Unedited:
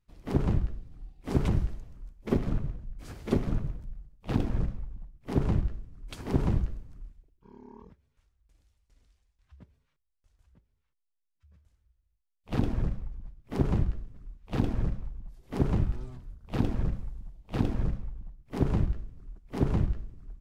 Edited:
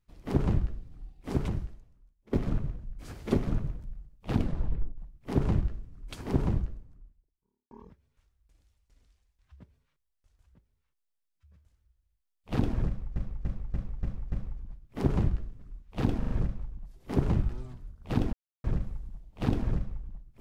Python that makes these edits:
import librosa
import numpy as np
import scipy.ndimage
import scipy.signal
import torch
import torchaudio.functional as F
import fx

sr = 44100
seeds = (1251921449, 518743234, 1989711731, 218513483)

y = fx.studio_fade_out(x, sr, start_s=6.12, length_s=1.59)
y = fx.edit(y, sr, fx.fade_out_to(start_s=1.17, length_s=1.16, curve='qua', floor_db=-20.5),
    fx.tape_stop(start_s=4.33, length_s=0.65),
    fx.repeat(start_s=12.87, length_s=0.29, count=6),
    fx.stutter(start_s=14.73, slice_s=0.04, count=4),
    fx.insert_silence(at_s=16.76, length_s=0.31), tone=tone)